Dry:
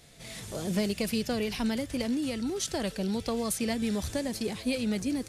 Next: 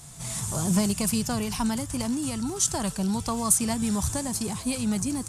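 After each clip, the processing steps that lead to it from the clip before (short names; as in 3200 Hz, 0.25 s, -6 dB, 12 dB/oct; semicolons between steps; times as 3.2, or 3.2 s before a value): bell 110 Hz -3.5 dB; vocal rider within 4 dB 2 s; graphic EQ 125/250/500/1000/2000/4000/8000 Hz +11/-3/-11/+10/-8/-6/+11 dB; gain +4.5 dB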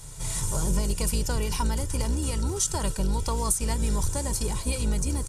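octaver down 2 oct, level +2 dB; comb 2.1 ms, depth 55%; compressor 4:1, threshold -22 dBFS, peak gain reduction 7.5 dB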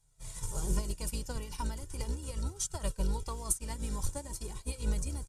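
flange 0.38 Hz, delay 1.2 ms, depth 2.7 ms, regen +57%; upward expander 2.5:1, over -42 dBFS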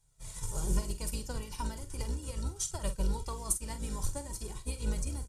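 doubler 46 ms -11 dB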